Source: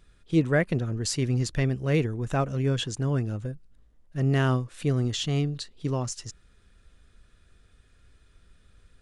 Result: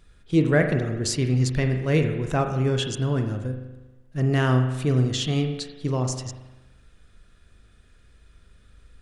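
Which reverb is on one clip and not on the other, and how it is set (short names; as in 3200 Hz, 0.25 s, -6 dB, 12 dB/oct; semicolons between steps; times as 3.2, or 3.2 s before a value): spring tank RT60 1.1 s, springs 39 ms, chirp 55 ms, DRR 5.5 dB; gain +2.5 dB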